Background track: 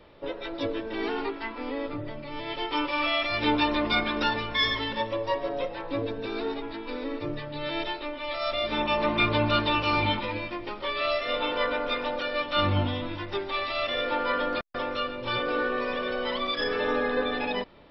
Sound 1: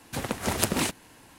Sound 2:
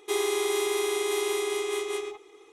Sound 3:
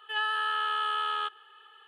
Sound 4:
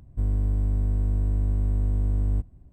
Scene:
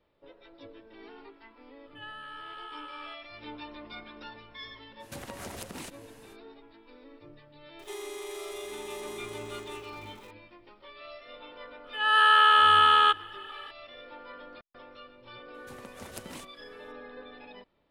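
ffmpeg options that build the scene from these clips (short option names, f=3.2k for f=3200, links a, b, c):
-filter_complex "[3:a]asplit=2[a][b];[1:a]asplit=2[c][d];[0:a]volume=-19dB[e];[c]acompressor=threshold=-35dB:ratio=6:attack=3.2:release=140:knee=1:detection=peak[f];[2:a]aeval=exprs='val(0)+0.5*0.015*sgn(val(0))':c=same[g];[b]dynaudnorm=f=170:g=3:m=16.5dB[h];[a]atrim=end=1.87,asetpts=PTS-STARTPTS,volume=-14.5dB,afade=t=in:d=0.004:c=hsin,afade=t=out:st=1.866:d=0.004:c=hsin,adelay=1860[i];[f]atrim=end=1.38,asetpts=PTS-STARTPTS,volume=-3dB,afade=t=in:d=0.05,afade=t=out:st=1.33:d=0.05,adelay=4990[j];[g]atrim=end=2.52,asetpts=PTS-STARTPTS,volume=-14dB,afade=t=in:d=0.004:c=hsin,afade=t=out:st=2.516:d=0.004:c=hsin,adelay=7790[k];[h]atrim=end=1.87,asetpts=PTS-STARTPTS,volume=-5dB,afade=t=in:d=0.004:c=hsin,afade=t=out:st=1.866:d=0.004:c=hsin,adelay=11840[l];[d]atrim=end=1.38,asetpts=PTS-STARTPTS,volume=-18dB,afade=t=in:d=0.004:c=hsin,afade=t=out:st=1.376:d=0.004:c=hsin,adelay=15540[m];[e][i][j][k][l][m]amix=inputs=6:normalize=0"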